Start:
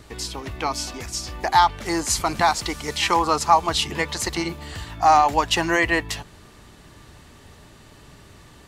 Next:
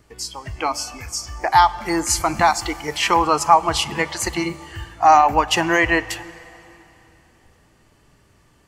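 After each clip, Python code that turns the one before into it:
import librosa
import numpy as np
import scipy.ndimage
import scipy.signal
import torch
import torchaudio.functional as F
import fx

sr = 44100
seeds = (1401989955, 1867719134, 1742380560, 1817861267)

y = fx.noise_reduce_blind(x, sr, reduce_db=12)
y = fx.peak_eq(y, sr, hz=3800.0, db=-10.0, octaves=0.2)
y = fx.rev_plate(y, sr, seeds[0], rt60_s=3.2, hf_ratio=0.9, predelay_ms=0, drr_db=17.0)
y = y * 10.0 ** (3.0 / 20.0)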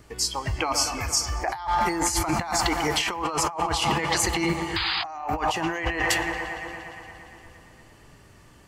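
y = fx.echo_wet_lowpass(x, sr, ms=116, feedback_pct=78, hz=3300.0, wet_db=-16.0)
y = fx.spec_paint(y, sr, seeds[1], shape='noise', start_s=4.76, length_s=0.28, low_hz=740.0, high_hz=5000.0, level_db=-20.0)
y = fx.over_compress(y, sr, threshold_db=-25.0, ratio=-1.0)
y = y * 10.0 ** (-1.5 / 20.0)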